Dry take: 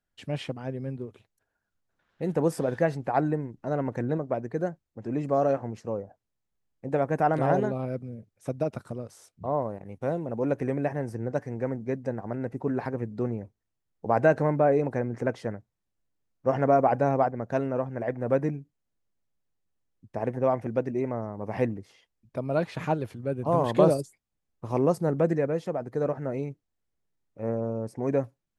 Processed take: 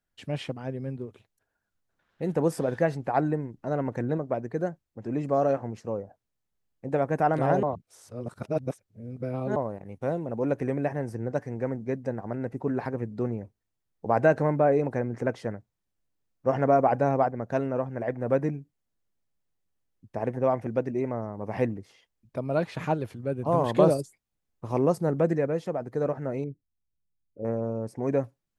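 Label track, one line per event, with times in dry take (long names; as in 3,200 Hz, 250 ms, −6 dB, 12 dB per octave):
7.630000	9.560000	reverse
26.440000	27.450000	spectral envelope exaggerated exponent 2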